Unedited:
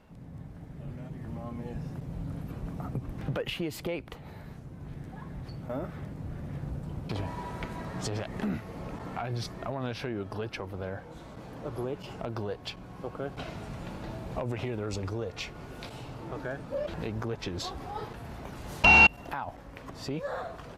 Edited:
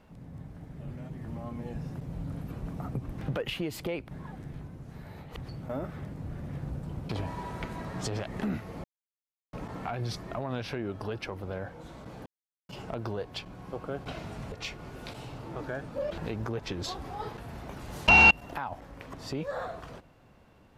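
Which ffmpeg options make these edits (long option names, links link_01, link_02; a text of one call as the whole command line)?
ffmpeg -i in.wav -filter_complex "[0:a]asplit=7[link_01][link_02][link_03][link_04][link_05][link_06][link_07];[link_01]atrim=end=4.112[link_08];[link_02]atrim=start=4.108:end=5.372,asetpts=PTS-STARTPTS,areverse[link_09];[link_03]atrim=start=5.368:end=8.84,asetpts=PTS-STARTPTS,afade=type=out:start_time=3.468:duration=0.004:curve=hsin,apad=pad_dur=0.69[link_10];[link_04]atrim=start=8.84:end=11.57,asetpts=PTS-STARTPTS,afade=type=in:duration=0.004:curve=hsin,afade=type=out:start_time=2.726:duration=0.004:curve=hsin[link_11];[link_05]atrim=start=11.57:end=12,asetpts=PTS-STARTPTS,volume=0[link_12];[link_06]atrim=start=12:end=13.832,asetpts=PTS-STARTPTS,afade=type=in:duration=0.004:curve=hsin[link_13];[link_07]atrim=start=15.278[link_14];[link_08][link_09]acrossfade=duration=0.004:curve1=hsin:curve2=hsin[link_15];[link_10][link_11][link_12][link_13]concat=n=4:v=0:a=1[link_16];[link_15][link_16]acrossfade=duration=0.004:curve1=hsin:curve2=hsin[link_17];[link_17][link_14]acrossfade=duration=0.004:curve1=hsin:curve2=hsin" out.wav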